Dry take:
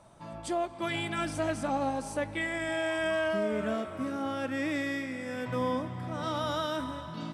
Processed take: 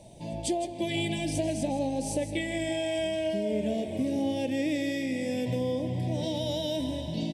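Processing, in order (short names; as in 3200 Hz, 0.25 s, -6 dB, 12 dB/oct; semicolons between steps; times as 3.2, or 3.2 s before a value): compressor, threshold -33 dBFS, peak gain reduction 7 dB; Butterworth band-stop 1300 Hz, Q 0.73; echo 0.16 s -11.5 dB; gain +8.5 dB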